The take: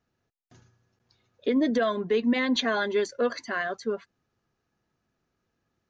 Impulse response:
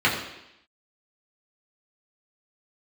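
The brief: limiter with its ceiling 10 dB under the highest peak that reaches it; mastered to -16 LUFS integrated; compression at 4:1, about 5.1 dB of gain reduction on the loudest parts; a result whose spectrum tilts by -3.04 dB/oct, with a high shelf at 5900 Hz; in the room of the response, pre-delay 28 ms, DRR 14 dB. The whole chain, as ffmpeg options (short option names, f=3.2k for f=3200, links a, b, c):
-filter_complex "[0:a]highshelf=f=5.9k:g=-4.5,acompressor=threshold=-26dB:ratio=4,alimiter=level_in=3.5dB:limit=-24dB:level=0:latency=1,volume=-3.5dB,asplit=2[a][b];[1:a]atrim=start_sample=2205,adelay=28[c];[b][c]afir=irnorm=-1:irlink=0,volume=-32dB[d];[a][d]amix=inputs=2:normalize=0,volume=19.5dB"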